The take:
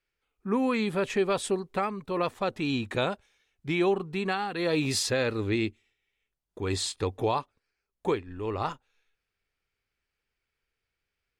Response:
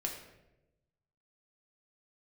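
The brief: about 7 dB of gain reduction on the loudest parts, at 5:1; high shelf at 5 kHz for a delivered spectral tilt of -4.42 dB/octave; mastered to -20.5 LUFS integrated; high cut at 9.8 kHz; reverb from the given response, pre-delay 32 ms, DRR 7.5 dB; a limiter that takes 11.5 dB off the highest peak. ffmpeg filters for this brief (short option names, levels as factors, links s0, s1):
-filter_complex "[0:a]lowpass=9800,highshelf=f=5000:g=8.5,acompressor=threshold=0.0355:ratio=5,alimiter=level_in=2.11:limit=0.0631:level=0:latency=1,volume=0.473,asplit=2[s0][s1];[1:a]atrim=start_sample=2205,adelay=32[s2];[s1][s2]afir=irnorm=-1:irlink=0,volume=0.355[s3];[s0][s3]amix=inputs=2:normalize=0,volume=8.91"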